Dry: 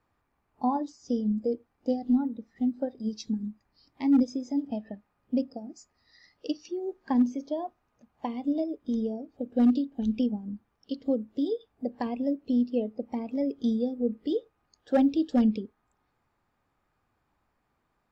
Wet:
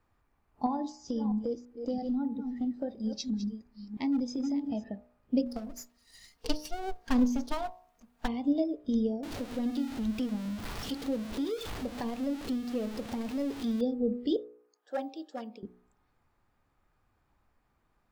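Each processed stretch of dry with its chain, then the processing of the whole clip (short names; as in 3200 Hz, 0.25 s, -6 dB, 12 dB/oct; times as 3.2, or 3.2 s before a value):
0.66–4.84 reverse delay 0.331 s, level -12 dB + compressor 3:1, threshold -29 dBFS
5.46–8.28 minimum comb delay 4.3 ms + high shelf 4900 Hz +10.5 dB
9.23–13.81 zero-crossing step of -34.5 dBFS + compressor 1.5:1, threshold -40 dBFS
14.36–15.63 HPF 800 Hz + bell 3500 Hz -11 dB 2.2 oct
whole clip: low shelf 71 Hz +10.5 dB; de-hum 60.67 Hz, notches 19; dynamic EQ 3900 Hz, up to +4 dB, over -58 dBFS, Q 1.2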